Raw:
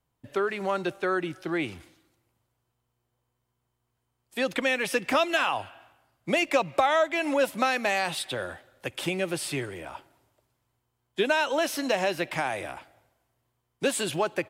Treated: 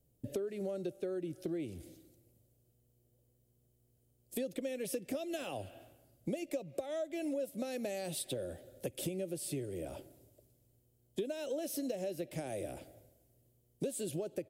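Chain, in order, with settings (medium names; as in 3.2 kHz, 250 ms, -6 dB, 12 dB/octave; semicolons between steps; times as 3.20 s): FFT filter 580 Hz 0 dB, 970 Hz -25 dB, 12 kHz +2 dB; compression 6:1, threshold -43 dBFS, peak gain reduction 22 dB; trim +6.5 dB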